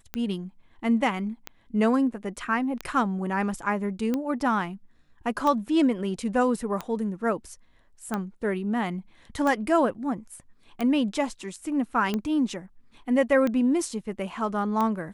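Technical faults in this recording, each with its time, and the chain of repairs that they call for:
tick 45 rpm -15 dBFS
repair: de-click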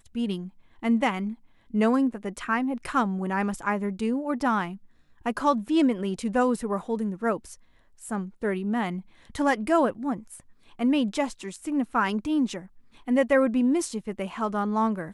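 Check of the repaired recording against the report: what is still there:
nothing left

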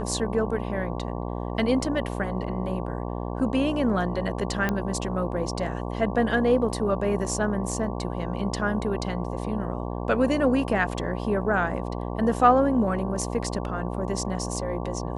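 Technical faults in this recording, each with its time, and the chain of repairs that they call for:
buzz 60 Hz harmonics 19 -31 dBFS
4.69 s: pop -12 dBFS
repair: de-click; de-hum 60 Hz, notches 19

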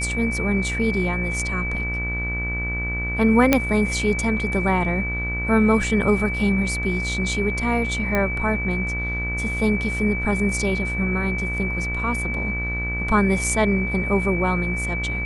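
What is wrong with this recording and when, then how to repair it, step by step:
buzz 60 Hz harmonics 38 -28 dBFS
whine 2.3 kHz -26 dBFS
3.53 s: pop -1 dBFS
8.15 s: pop -9 dBFS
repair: de-click; de-hum 60 Hz, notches 38; band-stop 2.3 kHz, Q 30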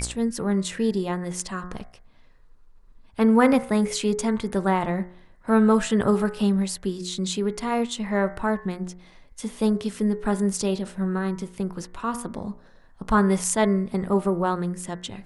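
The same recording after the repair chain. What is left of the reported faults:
3.53 s: pop

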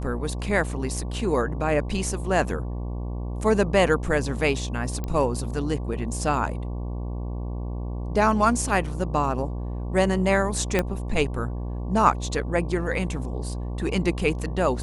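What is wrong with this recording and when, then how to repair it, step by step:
buzz 60 Hz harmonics 19 -30 dBFS
5.04 s: pop -17 dBFS
10.79 s: pop -8 dBFS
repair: de-click; de-hum 60 Hz, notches 19

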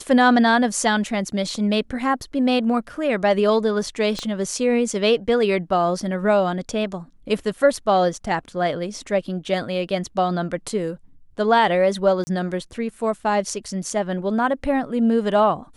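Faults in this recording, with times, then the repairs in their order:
4.19 s: pop -13 dBFS
12.24–12.27 s: dropout 30 ms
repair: de-click; interpolate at 12.24 s, 30 ms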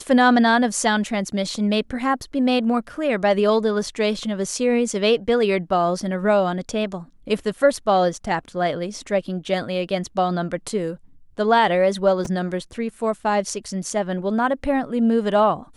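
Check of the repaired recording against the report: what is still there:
4.19 s: pop

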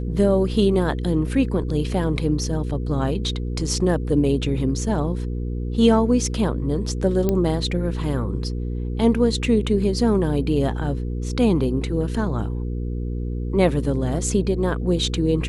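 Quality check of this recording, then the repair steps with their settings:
hum 60 Hz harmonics 8 -26 dBFS
7.29 s: pop -9 dBFS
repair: de-click; de-hum 60 Hz, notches 8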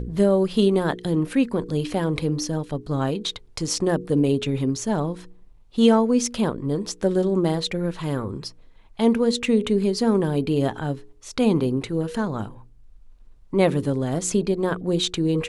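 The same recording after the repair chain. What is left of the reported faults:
nothing left

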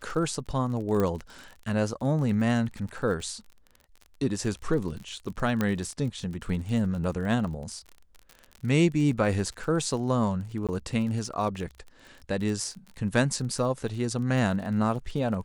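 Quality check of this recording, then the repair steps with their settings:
crackle 32 per s -35 dBFS
1.00 s: pop -15 dBFS
5.61 s: pop -13 dBFS
10.67–10.69 s: dropout 17 ms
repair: de-click; interpolate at 10.67 s, 17 ms

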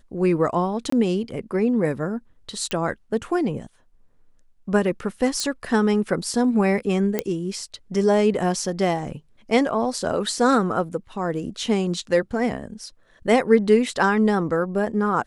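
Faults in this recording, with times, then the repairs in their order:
0.90–0.92 s: dropout 24 ms
2.71 s: pop -12 dBFS
5.40 s: pop -11 dBFS
7.19 s: pop -8 dBFS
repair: de-click; interpolate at 0.90 s, 24 ms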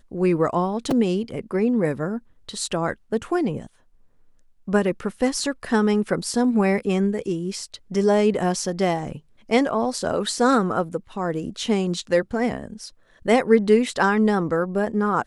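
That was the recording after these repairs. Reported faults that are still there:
nothing left

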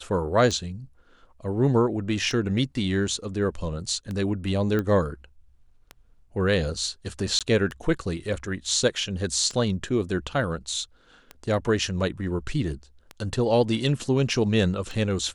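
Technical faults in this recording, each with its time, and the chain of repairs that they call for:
tick 33 1/3 rpm -20 dBFS
4.79 s: pop -15 dBFS
7.39–7.41 s: dropout 17 ms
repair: de-click; interpolate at 7.39 s, 17 ms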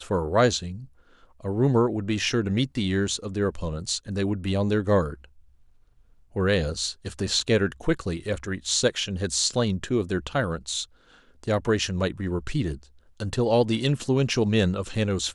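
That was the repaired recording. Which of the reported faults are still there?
nothing left

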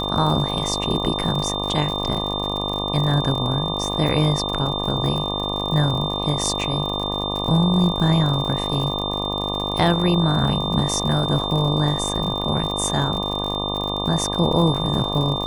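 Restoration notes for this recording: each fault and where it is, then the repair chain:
buzz 50 Hz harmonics 24 -27 dBFS
crackle 59 per s -26 dBFS
whine 3.6 kHz -26 dBFS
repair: de-click; de-hum 50 Hz, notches 24; band-stop 3.6 kHz, Q 30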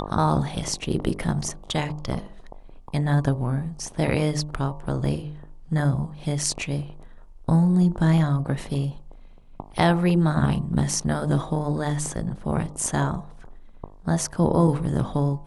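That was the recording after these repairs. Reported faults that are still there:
nothing left

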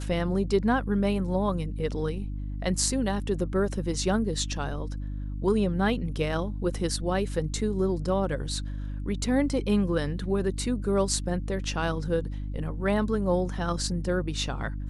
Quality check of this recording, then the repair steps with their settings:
hum 50 Hz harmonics 6 -33 dBFS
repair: de-hum 50 Hz, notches 6

